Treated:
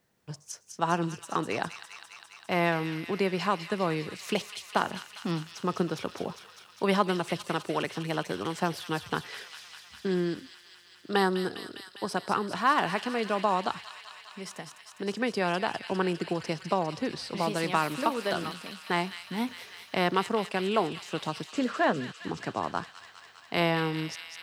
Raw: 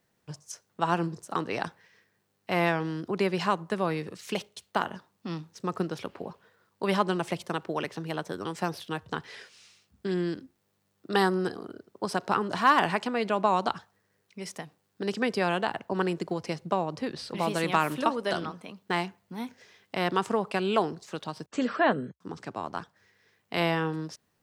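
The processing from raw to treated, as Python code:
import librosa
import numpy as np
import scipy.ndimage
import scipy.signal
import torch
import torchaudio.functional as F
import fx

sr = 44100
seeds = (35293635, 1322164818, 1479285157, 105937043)

p1 = fx.rider(x, sr, range_db=10, speed_s=0.5)
p2 = x + F.gain(torch.from_numpy(p1), -1.0).numpy()
p3 = fx.echo_wet_highpass(p2, sr, ms=202, feedback_pct=79, hz=2600.0, wet_db=-5.5)
y = F.gain(torch.from_numpy(p3), -6.0).numpy()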